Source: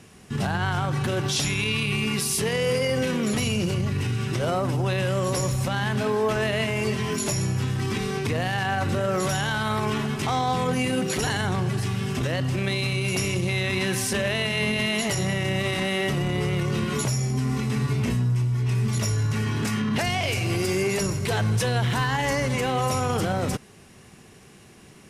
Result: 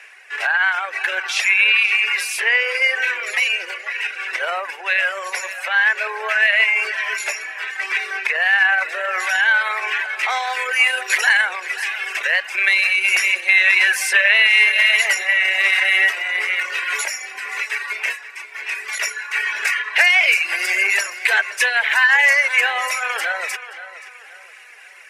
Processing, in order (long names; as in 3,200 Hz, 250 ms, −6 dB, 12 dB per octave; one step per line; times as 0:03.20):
Bessel high-pass filter 890 Hz, order 8
high-shelf EQ 4,600 Hz −10 dB, from 0:10.30 −2.5 dB
reverb reduction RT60 1.4 s
flat-topped bell 2,000 Hz +13 dB 1 octave
feedback echo with a low-pass in the loop 527 ms, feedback 39%, low-pass 4,500 Hz, level −13 dB
level +7 dB